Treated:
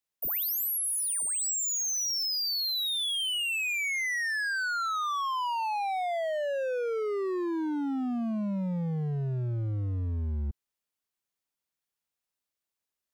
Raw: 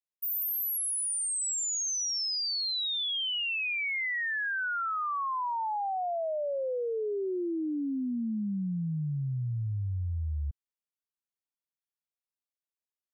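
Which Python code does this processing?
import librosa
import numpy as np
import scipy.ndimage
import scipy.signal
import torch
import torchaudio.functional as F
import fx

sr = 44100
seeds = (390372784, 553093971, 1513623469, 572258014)

p1 = 10.0 ** (-37.0 / 20.0) * (np.abs((x / 10.0 ** (-37.0 / 20.0) + 3.0) % 4.0 - 2.0) - 1.0)
p2 = x + (p1 * librosa.db_to_amplitude(-3.0))
y = p2 * librosa.db_to_amplitude(1.5)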